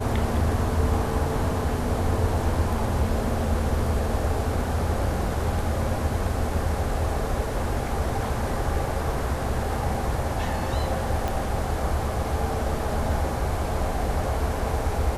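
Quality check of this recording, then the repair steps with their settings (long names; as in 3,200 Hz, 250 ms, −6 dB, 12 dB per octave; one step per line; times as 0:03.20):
0:11.28: click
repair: click removal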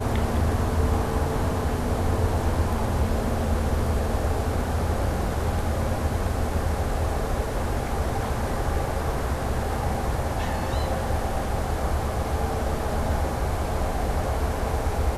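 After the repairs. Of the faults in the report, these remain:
0:11.28: click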